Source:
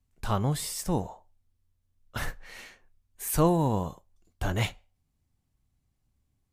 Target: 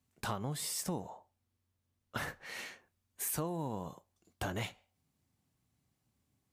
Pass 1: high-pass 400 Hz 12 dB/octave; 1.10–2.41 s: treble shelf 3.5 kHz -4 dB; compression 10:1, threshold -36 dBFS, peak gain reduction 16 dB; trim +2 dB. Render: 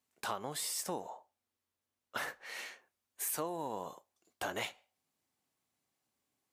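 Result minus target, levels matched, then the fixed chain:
125 Hz band -12.5 dB
high-pass 130 Hz 12 dB/octave; 1.10–2.41 s: treble shelf 3.5 kHz -4 dB; compression 10:1, threshold -36 dBFS, peak gain reduction 18 dB; trim +2 dB

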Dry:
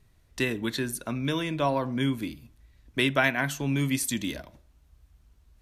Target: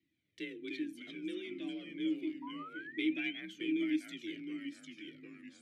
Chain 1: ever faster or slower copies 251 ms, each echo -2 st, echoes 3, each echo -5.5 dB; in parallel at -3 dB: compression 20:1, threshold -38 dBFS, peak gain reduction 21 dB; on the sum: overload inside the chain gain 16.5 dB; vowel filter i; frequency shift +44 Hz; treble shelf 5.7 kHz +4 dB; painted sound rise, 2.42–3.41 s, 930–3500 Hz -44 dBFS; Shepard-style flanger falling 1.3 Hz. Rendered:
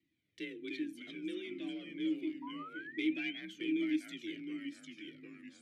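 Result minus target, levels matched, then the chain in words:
overload inside the chain: distortion +17 dB
ever faster or slower copies 251 ms, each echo -2 st, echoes 3, each echo -5.5 dB; in parallel at -3 dB: compression 20:1, threshold -38 dBFS, peak gain reduction 21 dB; on the sum: overload inside the chain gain 10 dB; vowel filter i; frequency shift +44 Hz; treble shelf 5.7 kHz +4 dB; painted sound rise, 2.42–3.41 s, 930–3500 Hz -44 dBFS; Shepard-style flanger falling 1.3 Hz

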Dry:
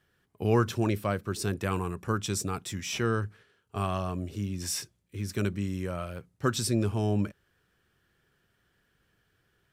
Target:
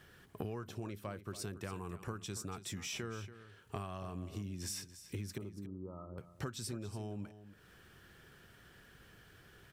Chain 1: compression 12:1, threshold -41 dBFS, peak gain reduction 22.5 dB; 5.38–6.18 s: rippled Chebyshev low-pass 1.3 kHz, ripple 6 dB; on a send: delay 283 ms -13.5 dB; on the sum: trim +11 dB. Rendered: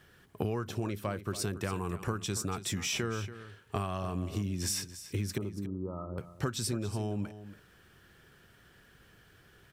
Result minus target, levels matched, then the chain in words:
compression: peak gain reduction -8.5 dB
compression 12:1, threshold -50.5 dBFS, peak gain reduction 31.5 dB; 5.38–6.18 s: rippled Chebyshev low-pass 1.3 kHz, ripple 6 dB; on a send: delay 283 ms -13.5 dB; on the sum: trim +11 dB

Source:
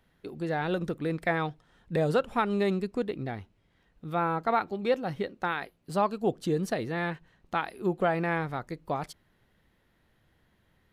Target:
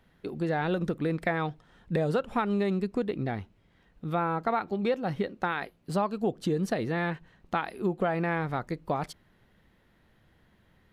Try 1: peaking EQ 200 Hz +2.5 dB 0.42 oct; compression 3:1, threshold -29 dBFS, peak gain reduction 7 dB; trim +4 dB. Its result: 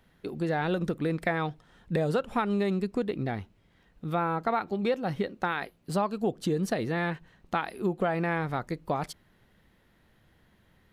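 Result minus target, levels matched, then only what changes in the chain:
8 kHz band +3.5 dB
add after compression: treble shelf 5.3 kHz -5 dB

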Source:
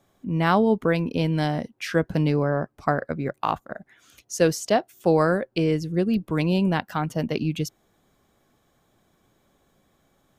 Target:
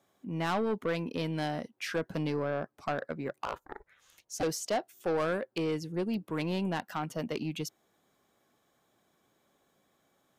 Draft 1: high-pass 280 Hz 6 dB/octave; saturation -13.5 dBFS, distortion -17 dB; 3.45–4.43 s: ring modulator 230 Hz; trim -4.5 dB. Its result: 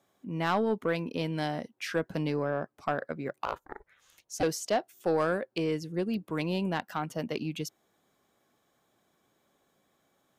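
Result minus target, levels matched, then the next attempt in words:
saturation: distortion -7 dB
high-pass 280 Hz 6 dB/octave; saturation -20 dBFS, distortion -10 dB; 3.45–4.43 s: ring modulator 230 Hz; trim -4.5 dB

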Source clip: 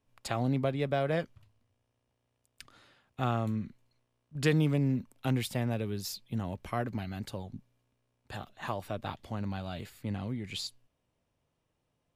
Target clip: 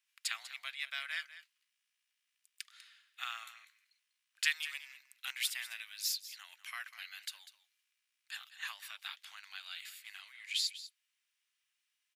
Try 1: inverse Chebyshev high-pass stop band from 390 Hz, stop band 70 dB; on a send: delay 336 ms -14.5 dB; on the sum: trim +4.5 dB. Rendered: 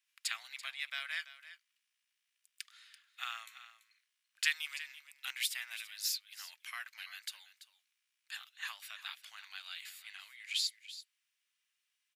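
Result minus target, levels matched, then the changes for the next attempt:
echo 140 ms late
change: delay 196 ms -14.5 dB

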